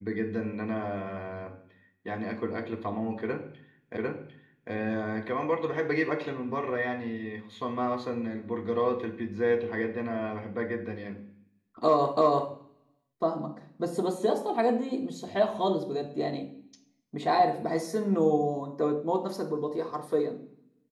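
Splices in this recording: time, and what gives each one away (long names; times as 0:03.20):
0:03.97: the same again, the last 0.75 s
0:12.17: the same again, the last 0.33 s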